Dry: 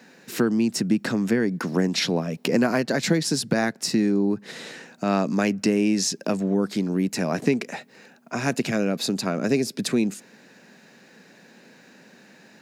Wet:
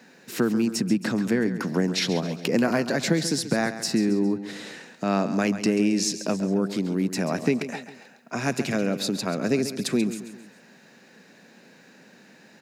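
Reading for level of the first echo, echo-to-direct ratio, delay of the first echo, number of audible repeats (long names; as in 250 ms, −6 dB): −12.0 dB, −11.0 dB, 136 ms, 3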